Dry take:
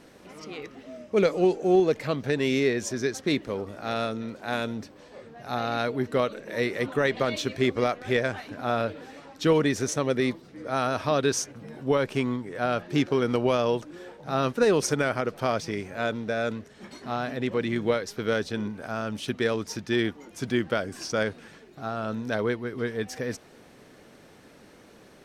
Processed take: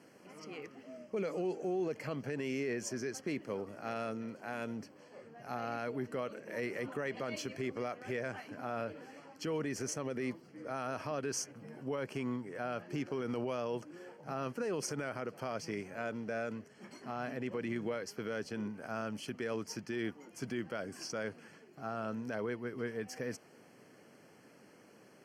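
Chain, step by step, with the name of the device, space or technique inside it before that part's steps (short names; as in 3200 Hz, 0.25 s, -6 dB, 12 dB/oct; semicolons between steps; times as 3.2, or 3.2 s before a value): PA system with an anti-feedback notch (HPF 110 Hz 24 dB/oct; Butterworth band-stop 3700 Hz, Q 3.7; limiter -20.5 dBFS, peak gain reduction 10.5 dB); gain -7.5 dB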